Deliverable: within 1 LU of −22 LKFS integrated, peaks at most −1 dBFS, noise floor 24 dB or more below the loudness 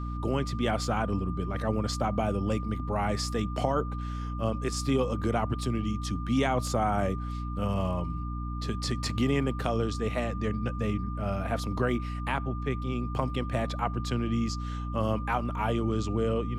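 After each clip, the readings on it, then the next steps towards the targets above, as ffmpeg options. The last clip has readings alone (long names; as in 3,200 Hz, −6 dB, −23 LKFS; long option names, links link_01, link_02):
mains hum 60 Hz; hum harmonics up to 300 Hz; level of the hum −32 dBFS; interfering tone 1,200 Hz; level of the tone −41 dBFS; integrated loudness −30.0 LKFS; sample peak −12.5 dBFS; target loudness −22.0 LKFS
→ -af "bandreject=frequency=60:width_type=h:width=4,bandreject=frequency=120:width_type=h:width=4,bandreject=frequency=180:width_type=h:width=4,bandreject=frequency=240:width_type=h:width=4,bandreject=frequency=300:width_type=h:width=4"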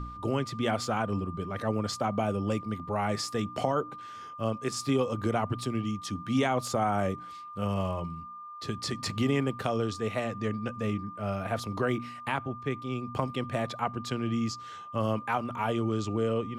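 mains hum none found; interfering tone 1,200 Hz; level of the tone −41 dBFS
→ -af "bandreject=frequency=1200:width=30"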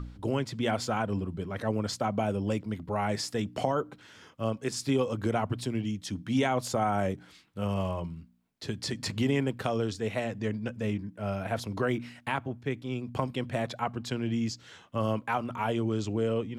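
interfering tone none found; integrated loudness −31.5 LKFS; sample peak −13.5 dBFS; target loudness −22.0 LKFS
→ -af "volume=9.5dB"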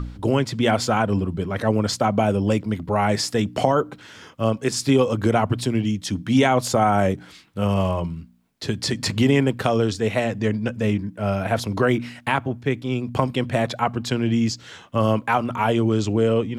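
integrated loudness −22.0 LKFS; sample peak −4.0 dBFS; background noise floor −47 dBFS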